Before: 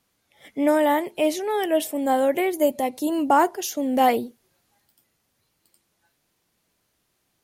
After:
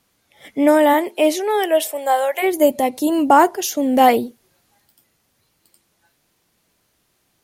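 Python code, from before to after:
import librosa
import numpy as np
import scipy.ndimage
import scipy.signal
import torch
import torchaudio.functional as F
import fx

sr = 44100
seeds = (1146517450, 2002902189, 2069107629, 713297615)

y = fx.highpass(x, sr, hz=fx.line((0.93, 190.0), (2.42, 700.0)), slope=24, at=(0.93, 2.42), fade=0.02)
y = y * librosa.db_to_amplitude(6.0)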